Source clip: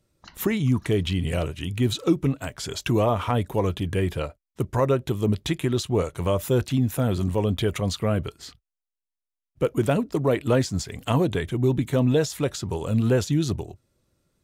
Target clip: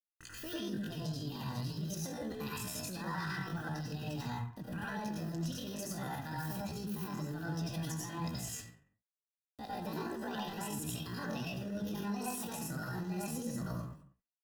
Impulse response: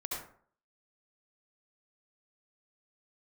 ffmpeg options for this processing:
-filter_complex "[0:a]equalizer=f=380:t=o:w=1.4:g=-12.5,alimiter=limit=-24dB:level=0:latency=1:release=35,areverse,acompressor=threshold=-43dB:ratio=12,areverse,asplit=2[a][b];[b]adelay=250.7,volume=-22dB,highshelf=f=4k:g=-5.64[c];[a][c]amix=inputs=2:normalize=0,aeval=exprs='val(0)*gte(abs(val(0)),0.00126)':c=same,asplit=2[d][e];[e]adelay=26,volume=-12.5dB[f];[d][f]amix=inputs=2:normalize=0[g];[1:a]atrim=start_sample=2205,afade=t=out:st=0.44:d=0.01,atrim=end_sample=19845,asetrate=38367,aresample=44100[h];[g][h]afir=irnorm=-1:irlink=0,asetrate=70004,aresample=44100,atempo=0.629961,asuperstop=centerf=2200:order=8:qfactor=5.9,volume=5dB"

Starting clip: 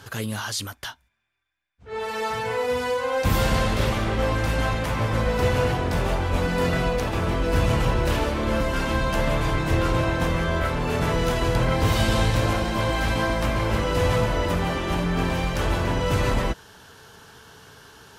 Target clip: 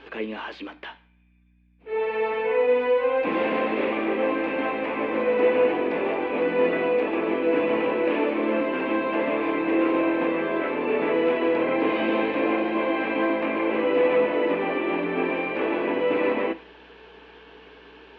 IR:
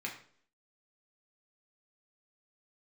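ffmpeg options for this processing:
-filter_complex "[0:a]highpass=f=260:w=0.5412,highpass=f=260:w=1.3066,equalizer=f=300:t=q:w=4:g=9,equalizer=f=460:t=q:w=4:g=6,equalizer=f=1.4k:t=q:w=4:g=-7,equalizer=f=2.5k:t=q:w=4:g=8,lowpass=f=3.2k:w=0.5412,lowpass=f=3.2k:w=1.3066,aeval=exprs='val(0)+0.00158*(sin(2*PI*60*n/s)+sin(2*PI*2*60*n/s)/2+sin(2*PI*3*60*n/s)/3+sin(2*PI*4*60*n/s)/4+sin(2*PI*5*60*n/s)/5)':c=same,asplit=2[a][b];[1:a]atrim=start_sample=2205[c];[b][c]afir=irnorm=-1:irlink=0,volume=-10dB[d];[a][d]amix=inputs=2:normalize=0,acrossover=split=2500[e][f];[f]acompressor=threshold=-47dB:ratio=4:attack=1:release=60[g];[e][g]amix=inputs=2:normalize=0,volume=-1.5dB"

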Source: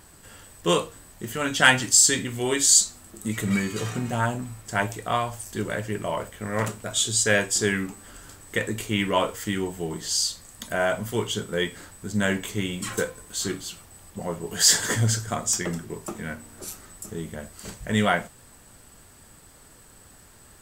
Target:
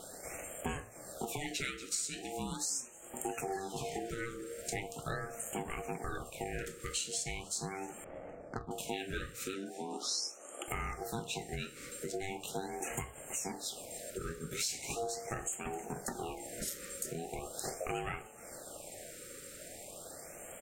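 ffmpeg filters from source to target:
-filter_complex "[0:a]aeval=exprs='val(0)*sin(2*PI*580*n/s)':c=same,acompressor=threshold=-40dB:ratio=10,asettb=1/sr,asplit=3[a][b][c];[a]atrim=end=9.544[d];[b]atrim=start=9.54:end=10.68,asetpts=PTS-STARTPTS,afade=t=in:d=0.004:c=qsin,afade=t=out:st=1.136:d=0.004:c=qsin,highpass=f=220:w=0.5412,highpass=f=220:w=1.3066,equalizer=f=310:t=q:w=4:g=5,equalizer=f=1.2k:t=q:w=4:g=8,equalizer=f=1.7k:t=q:w=4:g=-6,equalizer=f=2.5k:t=q:w=4:g=-5,equalizer=f=5.5k:t=q:w=4:g=5,equalizer=f=7.8k:t=q:w=4:g=-6,lowpass=f=10k:w=0.5412,lowpass=f=10k:w=1.3066[e];[c]atrim=start=10.676[f];[d][e]acrossfade=d=0.004:c1=hsin:c2=qsin[g];[g][f]acrossfade=d=0.004:c1=qsin:c2=hsin,asplit=6[h][i][j][k][l][m];[i]adelay=310,afreqshift=72,volume=-20.5dB[n];[j]adelay=620,afreqshift=144,volume=-24.7dB[o];[k]adelay=930,afreqshift=216,volume=-28.8dB[p];[l]adelay=1240,afreqshift=288,volume=-33dB[q];[m]adelay=1550,afreqshift=360,volume=-37.1dB[r];[h][n][o][p][q][r]amix=inputs=6:normalize=0,asettb=1/sr,asplit=3[s][t][u];[s]atrim=end=8.044[v];[t]atrim=start=8.04:end=8.71,asetpts=PTS-STARTPTS,afade=t=in:d=0.004:c=qsin,afade=t=out:st=0.666:d=0.004:c=qsin,adynamicsmooth=sensitivity=2.5:basefreq=1k[w];[u]atrim=start=8.706[x];[v][w]acrossfade=d=0.004:c1=hsin:c2=qsin[y];[y][x]acrossfade=d=0.004:c1=qsin:c2=hsin,equalizer=f=1k:t=o:w=0.23:g=-14,afftfilt=real='re*(1-between(b*sr/1024,800*pow(4800/800,0.5+0.5*sin(2*PI*0.4*pts/sr))/1.41,800*pow(4800/800,0.5+0.5*sin(2*PI*0.4*pts/sr))*1.41))':imag='im*(1-between(b*sr/1024,800*pow(4800/800,0.5+0.5*sin(2*PI*0.4*pts/sr))/1.41,800*pow(4800/800,0.5+0.5*sin(2*PI*0.4*pts/sr))*1.41))':win_size=1024:overlap=0.75,volume=6dB"

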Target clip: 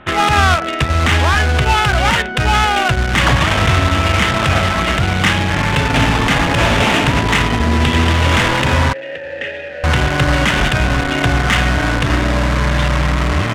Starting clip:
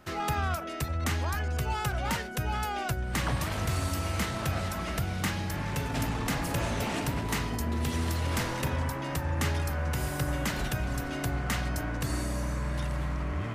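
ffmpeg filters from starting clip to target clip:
-filter_complex "[0:a]aresample=8000,aresample=44100,asplit=2[a][b];[b]acrusher=bits=4:mix=0:aa=0.000001,volume=-10.5dB[c];[a][c]amix=inputs=2:normalize=0,adynamicsmooth=sensitivity=2:basefreq=2.4k,crystalizer=i=7.5:c=0,asettb=1/sr,asplit=3[d][e][f];[d]atrim=end=8.934[g];[e]atrim=start=8.93:end=9.84,asetpts=PTS-STARTPTS,afade=t=in:d=0.004:c=qsin,afade=t=out:st=0.906:d=0.004:c=qsin,asplit=3[h][i][j];[h]bandpass=f=530:t=q:w=8,volume=0dB[k];[i]bandpass=f=1.84k:t=q:w=8,volume=-6dB[l];[j]bandpass=f=2.48k:t=q:w=8,volume=-9dB[m];[k][l][m]amix=inputs=3:normalize=0[n];[f]atrim=start=9.836[o];[g][n]acrossfade=d=0.004:c1=hsin:c2=qsin[p];[p][o]acrossfade=d=0.004:c1=qsin:c2=hsin,alimiter=level_in=14.5dB:limit=-1dB:release=50:level=0:latency=1,volume=-1dB"

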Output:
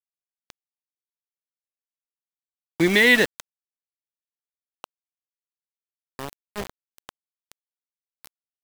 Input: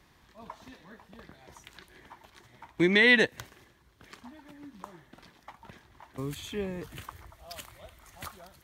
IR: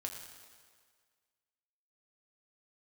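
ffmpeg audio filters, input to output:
-af "aeval=exprs='val(0)*gte(abs(val(0)),0.0398)':c=same,volume=4.5dB"

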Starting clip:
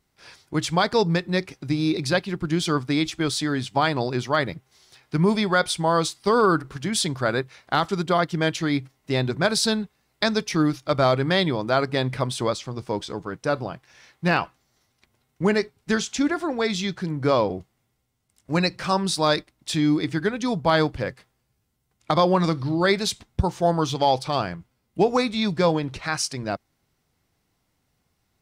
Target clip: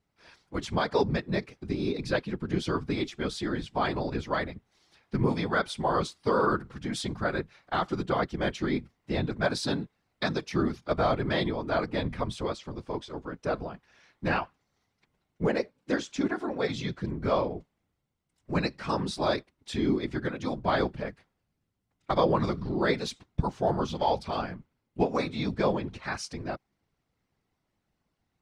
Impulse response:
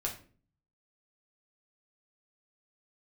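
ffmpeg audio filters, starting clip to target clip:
-filter_complex "[0:a]aemphasis=mode=reproduction:type=50kf,asettb=1/sr,asplit=3[a][b][c];[a]atrim=end=15.474[d];[b]atrim=start=15.47:end=16.12,asetpts=PTS-STARTPTS,afade=t=in:d=0.004:c=qsin,afade=t=out:st=0.646:d=0.004:c=qsin,afreqshift=65[e];[c]atrim=start=16.116[f];[d][e]acrossfade=d=0.004:c1=hsin:c2=qsin[g];[g][f]acrossfade=d=0.004:c1=qsin:c2=hsin,afftfilt=real='hypot(re,im)*cos(2*PI*random(0))':imag='hypot(re,im)*sin(2*PI*random(1))':win_size=512:overlap=0.75"

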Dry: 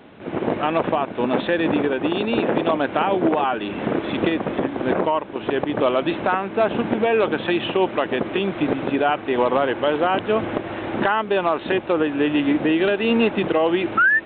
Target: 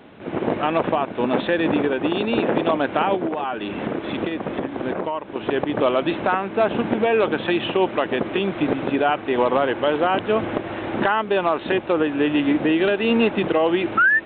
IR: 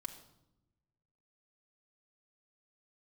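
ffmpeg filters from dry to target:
-filter_complex "[0:a]asplit=3[a][b][c];[a]afade=t=out:st=3.15:d=0.02[d];[b]acompressor=threshold=-22dB:ratio=4,afade=t=in:st=3.15:d=0.02,afade=t=out:st=5.27:d=0.02[e];[c]afade=t=in:st=5.27:d=0.02[f];[d][e][f]amix=inputs=3:normalize=0"

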